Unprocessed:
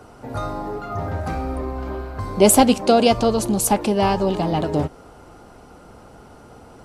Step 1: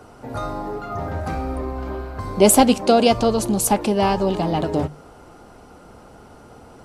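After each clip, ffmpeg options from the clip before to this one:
-af "bandreject=f=50:t=h:w=6,bandreject=f=100:t=h:w=6,bandreject=f=150:t=h:w=6"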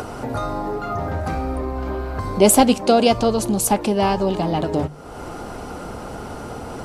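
-af "acompressor=mode=upward:threshold=0.112:ratio=2.5"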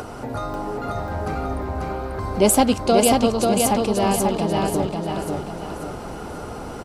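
-af "aecho=1:1:540|1080|1620|2160|2700:0.708|0.297|0.125|0.0525|0.022,volume=0.708"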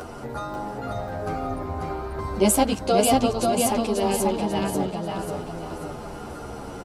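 -filter_complex "[0:a]asplit=2[s0][s1];[s1]adelay=10.1,afreqshift=-0.5[s2];[s0][s2]amix=inputs=2:normalize=1"

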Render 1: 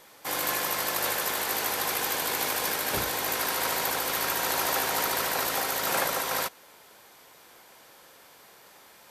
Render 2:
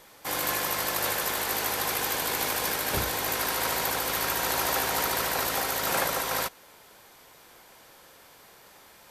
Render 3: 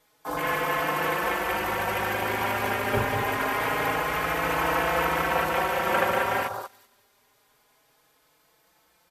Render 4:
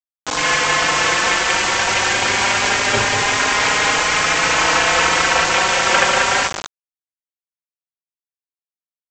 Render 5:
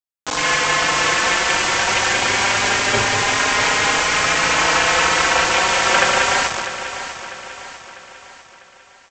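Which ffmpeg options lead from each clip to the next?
-af "lowshelf=f=90:g=11.5"
-filter_complex "[0:a]aecho=1:1:191|382|573|764:0.562|0.152|0.041|0.0111,afwtdn=0.0282,asplit=2[s0][s1];[s1]adelay=4.3,afreqshift=0.25[s2];[s0][s2]amix=inputs=2:normalize=1,volume=2.24"
-af "crystalizer=i=9:c=0,aresample=16000,acrusher=bits=3:mix=0:aa=0.000001,aresample=44100,volume=1.41"
-af "aecho=1:1:648|1296|1944|2592|3240:0.266|0.125|0.0588|0.0276|0.013,volume=0.891"

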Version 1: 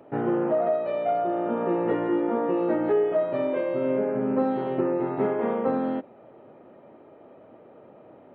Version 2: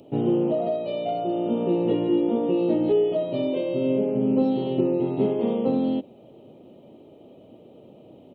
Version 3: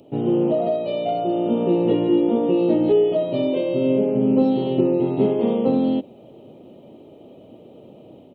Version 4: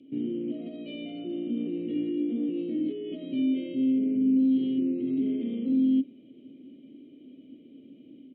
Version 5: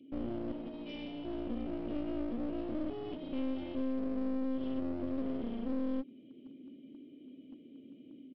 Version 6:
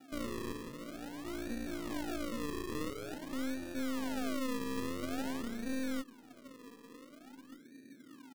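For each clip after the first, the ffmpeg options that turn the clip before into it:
-af "firequalizer=gain_entry='entry(180,0);entry(1600,-25);entry(2900,5)':delay=0.05:min_phase=1,volume=2"
-af "dynaudnorm=f=210:g=3:m=1.58"
-filter_complex "[0:a]lowshelf=f=84:g=8.5,alimiter=limit=0.141:level=0:latency=1:release=21,asplit=3[s0][s1][s2];[s0]bandpass=f=270:t=q:w=8,volume=1[s3];[s1]bandpass=f=2290:t=q:w=8,volume=0.501[s4];[s2]bandpass=f=3010:t=q:w=8,volume=0.355[s5];[s3][s4][s5]amix=inputs=3:normalize=0,volume=1.5"
-af "acompressor=threshold=0.0501:ratio=6,aresample=11025,aeval=exprs='clip(val(0),-1,0.00841)':c=same,aresample=44100,volume=0.708"
-filter_complex "[0:a]lowpass=1200,acrusher=samples=41:mix=1:aa=0.000001:lfo=1:lforange=41:lforate=0.48,asplit=2[s0][s1];[s1]adelay=1574,volume=0.0355,highshelf=f=4000:g=-35.4[s2];[s0][s2]amix=inputs=2:normalize=0,volume=0.794"

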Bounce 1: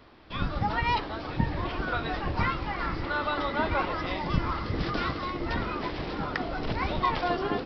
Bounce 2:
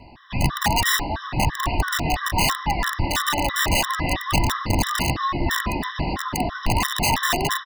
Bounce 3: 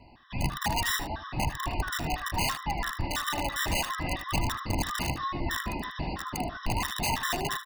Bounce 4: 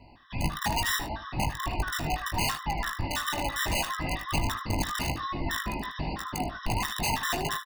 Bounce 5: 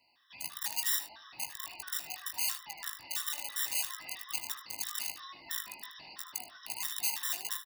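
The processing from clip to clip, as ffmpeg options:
-af "aeval=exprs='(mod(11.9*val(0)+1,2)-1)/11.9':c=same,aecho=1:1:1.1:0.6,afftfilt=real='re*gt(sin(2*PI*3*pts/sr)*(1-2*mod(floor(b*sr/1024/1000),2)),0)':imag='im*gt(sin(2*PI*3*pts/sr)*(1-2*mod(floor(b*sr/1024/1000),2)),0)':win_size=1024:overlap=0.75,volume=2.82"
-af "aecho=1:1:77:0.211,volume=0.376"
-filter_complex "[0:a]asplit=2[s0][s1];[s1]adelay=19,volume=0.355[s2];[s0][s2]amix=inputs=2:normalize=0"
-af "aderivative"

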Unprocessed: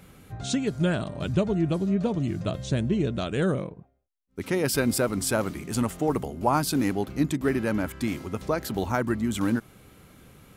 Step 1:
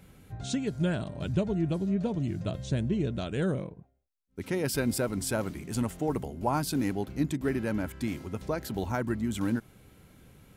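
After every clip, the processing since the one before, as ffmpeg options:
-af "lowshelf=f=170:g=4.5,bandreject=f=1200:w=9.9,volume=0.531"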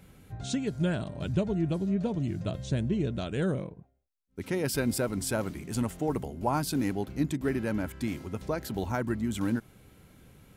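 -af anull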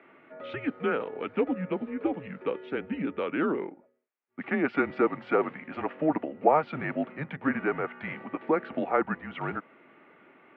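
-af "highpass=f=350:t=q:w=0.5412,highpass=f=350:t=q:w=1.307,lowpass=f=2600:t=q:w=0.5176,lowpass=f=2600:t=q:w=0.7071,lowpass=f=2600:t=q:w=1.932,afreqshift=-150,highpass=260,volume=2.66"

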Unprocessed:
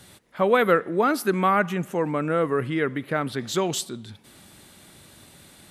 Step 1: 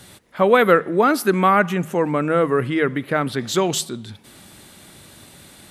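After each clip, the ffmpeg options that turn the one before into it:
-af "bandreject=f=78.89:t=h:w=4,bandreject=f=157.78:t=h:w=4,volume=1.78"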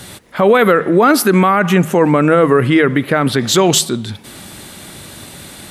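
-af "alimiter=level_in=3.98:limit=0.891:release=50:level=0:latency=1,volume=0.891"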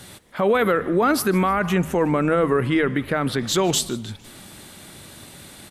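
-filter_complex "[0:a]asplit=4[s0][s1][s2][s3];[s1]adelay=153,afreqshift=-120,volume=0.0891[s4];[s2]adelay=306,afreqshift=-240,volume=0.0427[s5];[s3]adelay=459,afreqshift=-360,volume=0.0204[s6];[s0][s4][s5][s6]amix=inputs=4:normalize=0,volume=0.376"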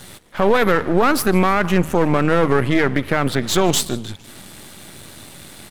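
-af "aeval=exprs='if(lt(val(0),0),0.251*val(0),val(0))':c=same,volume=2"

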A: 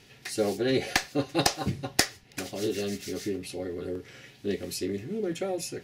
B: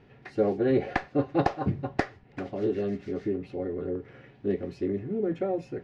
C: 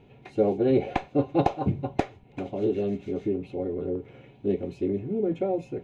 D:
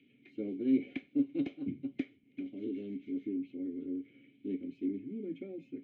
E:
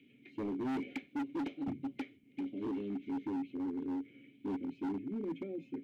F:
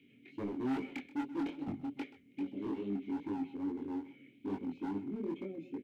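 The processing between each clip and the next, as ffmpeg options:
-af "lowpass=1300,volume=1.33"
-af "superequalizer=10b=0.447:11b=0.282:14b=0.398,volume=1.26"
-filter_complex "[0:a]acrossover=split=110|850|1500[s0][s1][s2][s3];[s3]acompressor=mode=upward:threshold=0.00126:ratio=2.5[s4];[s0][s1][s2][s4]amix=inputs=4:normalize=0,asplit=3[s5][s6][s7];[s5]bandpass=f=270:t=q:w=8,volume=1[s8];[s6]bandpass=f=2290:t=q:w=8,volume=0.501[s9];[s7]bandpass=f=3010:t=q:w=8,volume=0.355[s10];[s8][s9][s10]amix=inputs=3:normalize=0"
-af "volume=63.1,asoftclip=hard,volume=0.0158,volume=1.33"
-af "aecho=1:1:129:0.141,flanger=delay=20:depth=4.7:speed=2.4,volume=1.41"

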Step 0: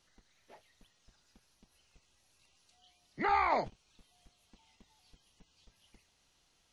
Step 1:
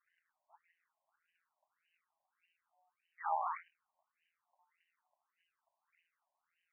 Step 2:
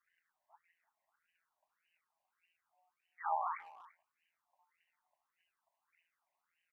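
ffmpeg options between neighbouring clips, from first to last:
-af "tremolo=f=170:d=0.824,asoftclip=type=tanh:threshold=0.075,afftfilt=real='re*between(b*sr/1024,770*pow(2200/770,0.5+0.5*sin(2*PI*1.7*pts/sr))/1.41,770*pow(2200/770,0.5+0.5*sin(2*PI*1.7*pts/sr))*1.41)':imag='im*between(b*sr/1024,770*pow(2200/770,0.5+0.5*sin(2*PI*1.7*pts/sr))/1.41,770*pow(2200/770,0.5+0.5*sin(2*PI*1.7*pts/sr))*1.41)':win_size=1024:overlap=0.75"
-filter_complex "[0:a]asplit=2[s0][s1];[s1]adelay=340,highpass=300,lowpass=3400,asoftclip=type=hard:threshold=0.0251,volume=0.112[s2];[s0][s2]amix=inputs=2:normalize=0"

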